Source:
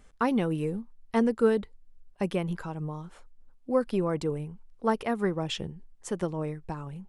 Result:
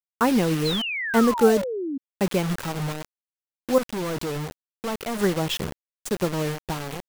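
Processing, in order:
bit-depth reduction 6 bits, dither none
0:00.65–0:01.98: sound drawn into the spectrogram fall 260–4,300 Hz −34 dBFS
0:03.78–0:05.19: gain into a clipping stage and back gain 31.5 dB
level +5.5 dB

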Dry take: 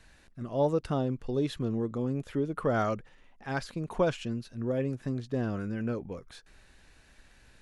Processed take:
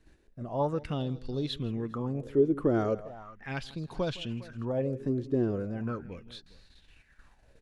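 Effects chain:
low-shelf EQ 250 Hz +8.5 dB
on a send: multi-tap delay 162/406 ms −19/−19.5 dB
on the sum: noise gate −50 dBFS, range −7 dB
auto-filter bell 0.38 Hz 330–4,400 Hz +16 dB
level −7.5 dB

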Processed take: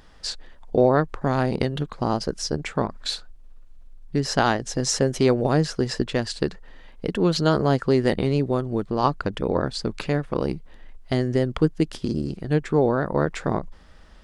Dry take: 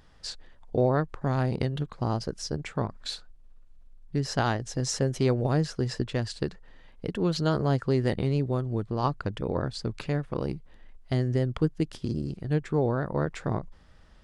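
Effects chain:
parametric band 110 Hz −9 dB 0.78 octaves
level +7 dB

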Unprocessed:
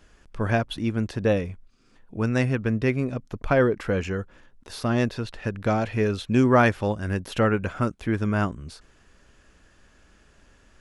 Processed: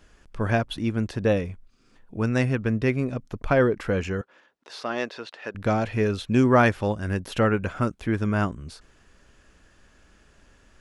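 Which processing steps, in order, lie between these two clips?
0:04.21–0:05.55: band-pass filter 450–5,600 Hz

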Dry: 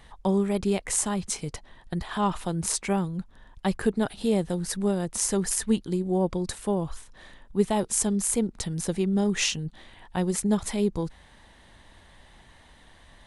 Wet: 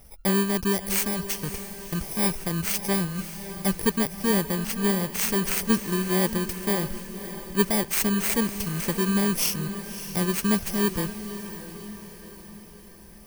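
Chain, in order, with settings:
samples in bit-reversed order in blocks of 32 samples
feedback delay with all-pass diffusion 593 ms, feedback 54%, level −11.5 dB
level +1 dB

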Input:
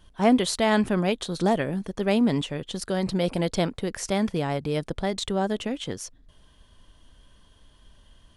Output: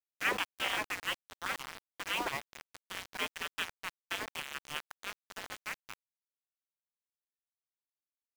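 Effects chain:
elliptic band-pass filter 220–2,500 Hz, stop band 40 dB
gate on every frequency bin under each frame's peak −25 dB weak
leveller curve on the samples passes 1
centre clipping without the shift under −41 dBFS
level +6 dB

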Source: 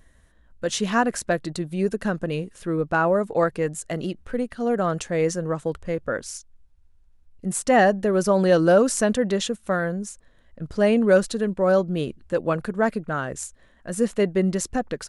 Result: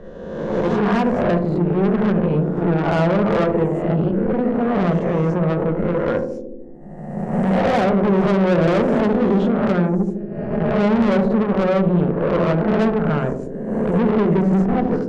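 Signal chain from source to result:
peak hold with a rise ahead of every peak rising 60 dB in 1.13 s
low-pass filter 1,100 Hz 12 dB per octave
on a send at −8 dB: tilt shelving filter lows +4.5 dB, about 800 Hz + convolution reverb, pre-delay 4 ms
on the sum: tube saturation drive 22 dB, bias 0.75
parametric band 160 Hz +5 dB 0.25 octaves
feedback echo with a band-pass in the loop 74 ms, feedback 74%, band-pass 300 Hz, level −4.5 dB
multiband upward and downward compressor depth 40%
level +6 dB

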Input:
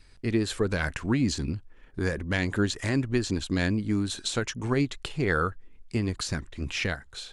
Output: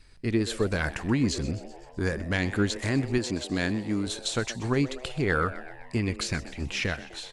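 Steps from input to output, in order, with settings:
0:03.18–0:04.07: high-pass filter 160 Hz 6 dB per octave
0:05.99–0:06.60: parametric band 2,300 Hz +9 dB 0.57 octaves
echo with shifted repeats 127 ms, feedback 60%, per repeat +120 Hz, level −16 dB

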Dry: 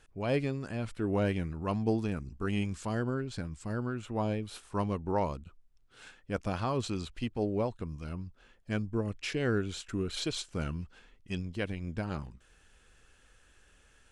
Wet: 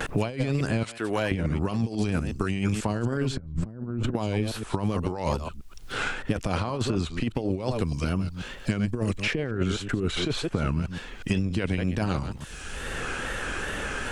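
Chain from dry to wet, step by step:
delay that plays each chunk backwards 122 ms, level −12.5 dB
0:00.83–0:01.32: high-pass filter 1,300 Hz 6 dB per octave
0:03.39–0:04.14: spectral tilt −4.5 dB per octave
compressor whose output falls as the input rises −34 dBFS, ratio −0.5
tape wow and flutter 89 cents
multiband upward and downward compressor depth 100%
level +7.5 dB

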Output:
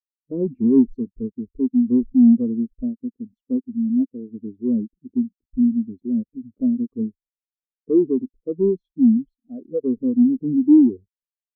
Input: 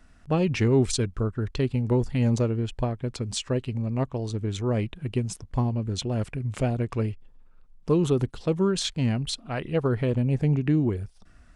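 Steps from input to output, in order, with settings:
graphic EQ with 10 bands 125 Hz −12 dB, 250 Hz +12 dB, 500 Hz +4 dB, 1,000 Hz −5 dB, 2,000 Hz −7 dB, 4,000 Hz −9 dB, 8,000 Hz −12 dB
leveller curve on the samples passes 3
every bin expanded away from the loudest bin 2.5 to 1

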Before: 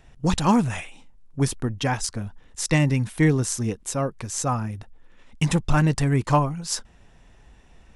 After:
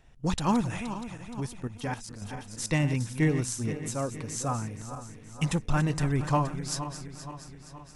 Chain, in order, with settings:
feedback delay that plays each chunk backwards 236 ms, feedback 72%, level −11 dB
0:01.40–0:02.22: output level in coarse steps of 12 dB
level −6.5 dB

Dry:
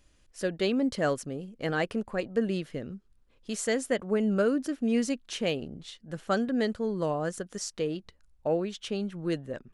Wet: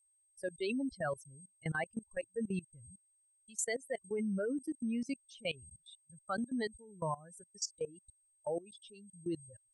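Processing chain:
spectral dynamics exaggerated over time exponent 3
steady tone 8,400 Hz −58 dBFS
output level in coarse steps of 20 dB
level +5.5 dB

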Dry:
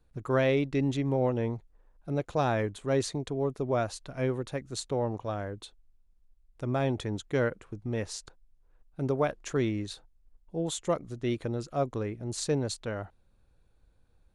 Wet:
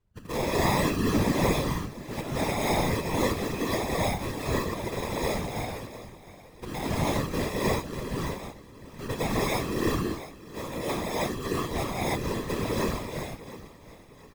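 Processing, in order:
decimation without filtering 30×
on a send: repeating echo 703 ms, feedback 42%, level −16.5 dB
on the sum: reverb whose tail is shaped and stops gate 350 ms rising, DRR −7.5 dB
random phases in short frames
level −6 dB

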